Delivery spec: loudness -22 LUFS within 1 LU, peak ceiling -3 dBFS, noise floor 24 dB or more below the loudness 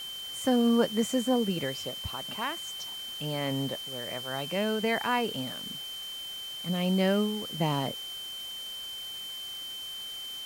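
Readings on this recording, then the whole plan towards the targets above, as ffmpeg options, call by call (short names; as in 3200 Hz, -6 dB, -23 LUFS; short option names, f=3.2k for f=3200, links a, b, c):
steady tone 3100 Hz; tone level -37 dBFS; noise floor -40 dBFS; noise floor target -55 dBFS; loudness -31.0 LUFS; peak -12.5 dBFS; loudness target -22.0 LUFS
-> -af "bandreject=f=3.1k:w=30"
-af "afftdn=nr=15:nf=-40"
-af "volume=9dB"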